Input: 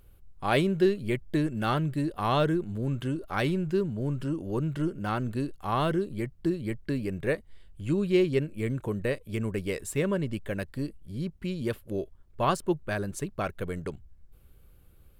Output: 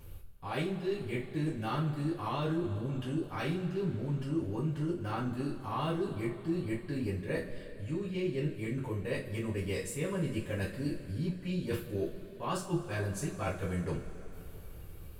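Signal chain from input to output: peaking EQ 4.9 kHz +2.5 dB; reverse; compression 6:1, threshold -41 dBFS, peak gain reduction 21 dB; reverse; two-slope reverb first 0.29 s, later 3.6 s, from -20 dB, DRR -8.5 dB

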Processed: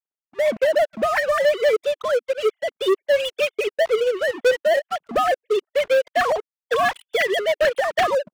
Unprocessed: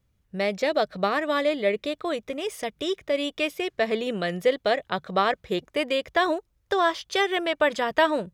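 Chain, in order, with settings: formants replaced by sine waves; waveshaping leveller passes 5; trim -8 dB

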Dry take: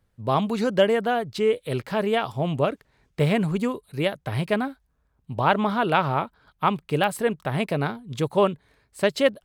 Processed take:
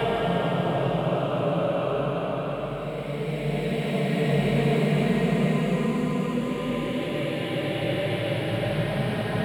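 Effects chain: hum 50 Hz, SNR 22 dB; Paulstretch 4.4×, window 1.00 s, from 2.27 s

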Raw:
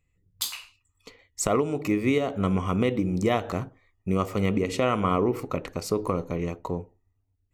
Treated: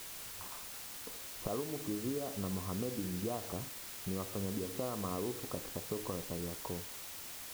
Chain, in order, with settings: low-pass 1.1 kHz 24 dB/octave; compression 2:1, threshold -50 dBFS, peak gain reduction 16.5 dB; word length cut 8-bit, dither triangular; trim +1.5 dB

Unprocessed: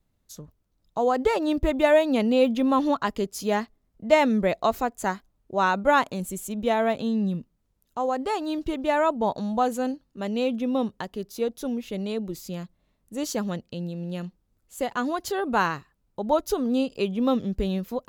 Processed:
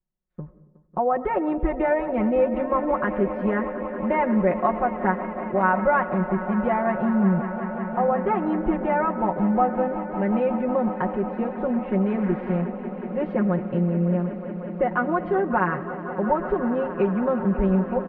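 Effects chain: 12.07–12.61 s: one-bit delta coder 64 kbps, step -34 dBFS; steep low-pass 2.1 kHz 36 dB/octave; in parallel at +2 dB: gain riding within 3 dB; on the sum: gate with hold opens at -44 dBFS; compression 2:1, threshold -22 dBFS, peak gain reduction 9 dB; comb 5.5 ms, depth 93%; echo with a slow build-up 183 ms, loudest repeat 5, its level -16 dB; on a send at -15.5 dB: reverberation RT60 1.0 s, pre-delay 70 ms; on the sum: trim -3 dB

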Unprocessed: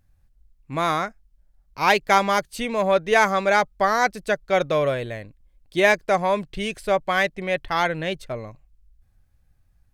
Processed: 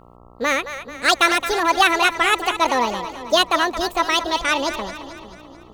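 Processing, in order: band-stop 610 Hz, Q 12; speed mistake 45 rpm record played at 78 rpm; peaking EQ 500 Hz +9 dB 0.66 oct; two-band feedback delay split 430 Hz, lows 452 ms, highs 219 ms, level -11 dB; mains buzz 60 Hz, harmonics 22, -50 dBFS -2 dB/octave; trim +2 dB

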